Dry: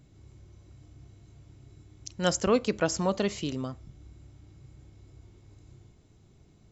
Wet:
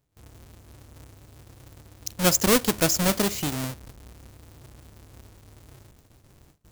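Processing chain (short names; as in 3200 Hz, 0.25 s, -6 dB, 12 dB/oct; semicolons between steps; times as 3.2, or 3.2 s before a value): half-waves squared off; gate with hold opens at -49 dBFS; high shelf 4600 Hz +11.5 dB; gain -1.5 dB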